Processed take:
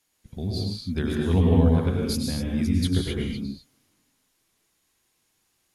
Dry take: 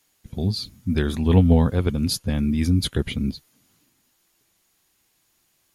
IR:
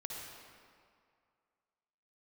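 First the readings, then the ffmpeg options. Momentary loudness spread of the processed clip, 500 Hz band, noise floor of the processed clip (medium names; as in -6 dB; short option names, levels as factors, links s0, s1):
15 LU, -1.5 dB, -72 dBFS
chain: -filter_complex "[1:a]atrim=start_sample=2205,atrim=end_sample=6615,asetrate=24696,aresample=44100[s0];[0:a][s0]afir=irnorm=-1:irlink=0,volume=0.596"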